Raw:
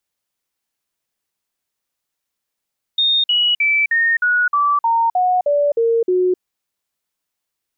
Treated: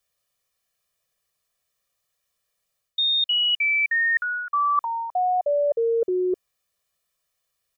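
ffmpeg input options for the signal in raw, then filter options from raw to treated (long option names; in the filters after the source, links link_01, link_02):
-f lavfi -i "aevalsrc='0.237*clip(min(mod(t,0.31),0.26-mod(t,0.31))/0.005,0,1)*sin(2*PI*3680*pow(2,-floor(t/0.31)/3)*mod(t,0.31))':duration=3.41:sample_rate=44100"
-af "aecho=1:1:1.7:0.89,areverse,acompressor=threshold=-21dB:ratio=6,areverse"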